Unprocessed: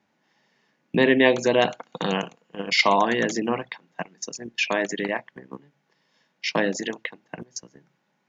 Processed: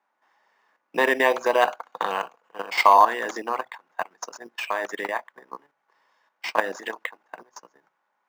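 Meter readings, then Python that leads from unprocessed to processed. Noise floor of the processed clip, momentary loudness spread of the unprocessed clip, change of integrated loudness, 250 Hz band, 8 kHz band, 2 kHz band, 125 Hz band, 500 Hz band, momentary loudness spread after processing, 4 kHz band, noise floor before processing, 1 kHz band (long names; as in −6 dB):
−76 dBFS, 19 LU, −0.5 dB, −11.5 dB, can't be measured, −1.0 dB, below −20 dB, −2.0 dB, 19 LU, −6.5 dB, −72 dBFS, +6.0 dB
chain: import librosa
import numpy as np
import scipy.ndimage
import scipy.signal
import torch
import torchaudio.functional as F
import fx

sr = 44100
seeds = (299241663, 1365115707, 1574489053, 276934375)

p1 = fx.sample_hold(x, sr, seeds[0], rate_hz=5400.0, jitter_pct=0)
p2 = x + F.gain(torch.from_numpy(p1), -8.0).numpy()
p3 = scipy.signal.sosfilt(scipy.signal.butter(2, 420.0, 'highpass', fs=sr, output='sos'), p2)
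p4 = fx.level_steps(p3, sr, step_db=10)
p5 = fx.peak_eq(p4, sr, hz=1100.0, db=13.5, octaves=1.5)
y = F.gain(torch.from_numpy(p5), -4.0).numpy()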